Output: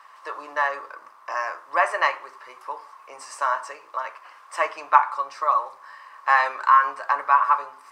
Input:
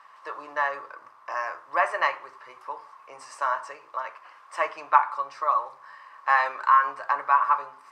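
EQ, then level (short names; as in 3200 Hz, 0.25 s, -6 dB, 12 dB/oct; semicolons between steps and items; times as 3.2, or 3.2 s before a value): HPF 210 Hz 12 dB/oct; high shelf 6700 Hz +8.5 dB; +2.5 dB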